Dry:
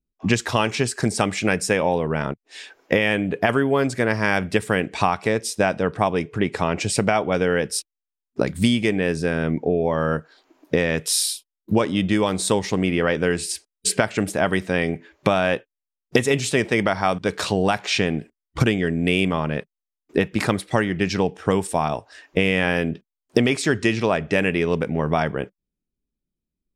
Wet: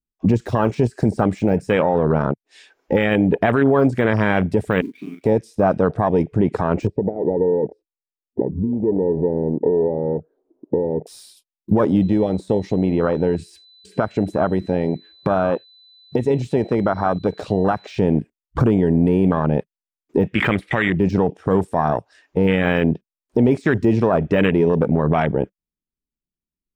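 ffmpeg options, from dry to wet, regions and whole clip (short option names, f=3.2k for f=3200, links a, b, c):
-filter_complex "[0:a]asettb=1/sr,asplit=3[a][b][c];[a]atrim=end=4.814[d];[b]atrim=start=4.81:end=5.24,asetpts=PTS-STARTPTS,afade=t=in:d=0.004:c=qsin,afade=t=out:st=0.426:d=0.004:c=qsin,asplit=3[e][f][g];[e]bandpass=f=270:t=q:w=8,volume=0dB[h];[f]bandpass=f=2.29k:t=q:w=8,volume=-6dB[i];[g]bandpass=f=3.01k:t=q:w=8,volume=-9dB[j];[h][i][j]amix=inputs=3:normalize=0,acrusher=bits=4:mode=log:mix=0:aa=0.000001,asplit=2[k][l];[l]adelay=39,volume=-4dB[m];[k][m]amix=inputs=2:normalize=0,atrim=end_sample=18963[n];[c]atrim=start=5.236[o];[d][n]acrossfade=d=0.004:c1=hsin:c2=qsin[p];[p][o]acrossfade=d=0.004:c1=qsin:c2=hsin,asettb=1/sr,asplit=3[q][r][s];[q]atrim=end=6.874[t];[r]atrim=start=6.87:end=11.07,asetpts=PTS-STARTPTS,afade=t=in:d=0.004:c=qsin,afade=t=out:st=4.196:d=0.004:c=qsin,acompressor=threshold=-27dB:ratio=8:attack=3.2:release=140:knee=1:detection=peak,lowpass=f=440:t=q:w=2.8[u];[s]atrim=start=11.066[v];[t][u]acrossfade=d=0.004:c1=hsin:c2=qsin[w];[w][v]acrossfade=d=0.004:c1=qsin:c2=hsin,asettb=1/sr,asplit=3[x][y][z];[x]atrim=end=12.024[aa];[y]atrim=start=12.02:end=17.98,asetpts=PTS-STARTPTS,afade=t=in:d=0.004:c=qsin,afade=t=out:st=5.956:d=0.004:c=qsin,aeval=exprs='val(0)+0.0141*sin(2*PI*4000*n/s)':c=same,acompressor=threshold=-29dB:ratio=1.5:attack=3.2:release=140:knee=1:detection=peak,highshelf=f=6.6k:g=-9.5[ab];[z]atrim=start=17.976[ac];[aa][ab]acrossfade=d=0.004:c1=hsin:c2=qsin[ad];[ad][ac]acrossfade=d=0.004:c1=qsin:c2=hsin,asettb=1/sr,asplit=3[ae][af][ag];[ae]atrim=end=20.334[ah];[af]atrim=start=20.33:end=20.9,asetpts=PTS-STARTPTS,afade=t=in:d=0.004:c=qsin,afade=t=out:st=0.566:d=0.004:c=qsin,equalizer=f=2.2k:t=o:w=1.3:g=11.5,acompressor=threshold=-22dB:ratio=1.5:attack=3.2:release=140:knee=1:detection=peak,asoftclip=type=hard:threshold=-4.5dB[ai];[ag]atrim=start=20.896[aj];[ah][ai]acrossfade=d=0.004:c1=hsin:c2=qsin[ak];[ak][aj]acrossfade=d=0.004:c1=qsin:c2=hsin,deesser=0.75,afwtdn=0.0501,alimiter=limit=-15dB:level=0:latency=1:release=28,volume=8dB"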